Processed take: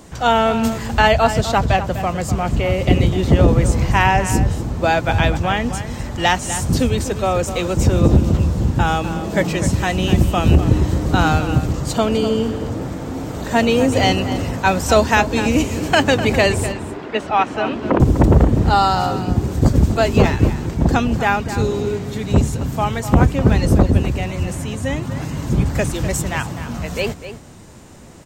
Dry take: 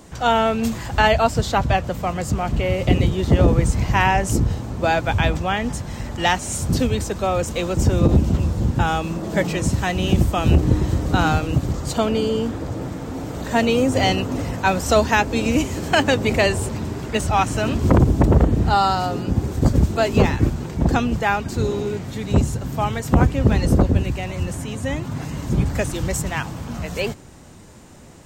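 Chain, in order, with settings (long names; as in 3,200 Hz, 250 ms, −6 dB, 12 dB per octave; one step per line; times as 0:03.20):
0:16.72–0:18.00: three-way crossover with the lows and the highs turned down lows −20 dB, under 220 Hz, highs −22 dB, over 3,800 Hz
slap from a distant wall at 43 metres, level −11 dB
level +2.5 dB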